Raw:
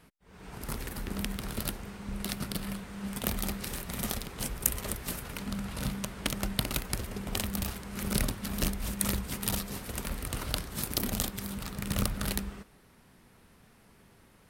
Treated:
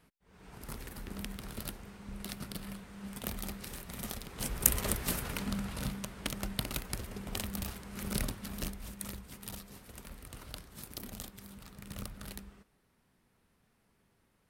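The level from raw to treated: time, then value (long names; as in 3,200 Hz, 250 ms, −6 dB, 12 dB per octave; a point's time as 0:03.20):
0:04.19 −7 dB
0:04.67 +2.5 dB
0:05.28 +2.5 dB
0:06.02 −5 dB
0:08.31 −5 dB
0:09.14 −13 dB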